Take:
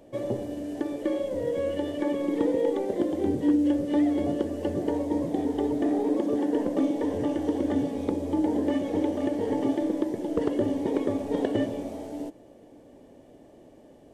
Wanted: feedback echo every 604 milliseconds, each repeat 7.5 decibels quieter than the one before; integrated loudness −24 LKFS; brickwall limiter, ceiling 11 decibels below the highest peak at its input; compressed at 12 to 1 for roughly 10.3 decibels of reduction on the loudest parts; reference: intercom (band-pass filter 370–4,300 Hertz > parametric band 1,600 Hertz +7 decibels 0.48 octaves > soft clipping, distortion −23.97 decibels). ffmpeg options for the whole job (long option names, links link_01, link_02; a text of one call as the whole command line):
ffmpeg -i in.wav -af "acompressor=threshold=-30dB:ratio=12,alimiter=level_in=6dB:limit=-24dB:level=0:latency=1,volume=-6dB,highpass=370,lowpass=4300,equalizer=frequency=1600:width_type=o:width=0.48:gain=7,aecho=1:1:604|1208|1812|2416|3020:0.422|0.177|0.0744|0.0312|0.0131,asoftclip=threshold=-30.5dB,volume=17.5dB" out.wav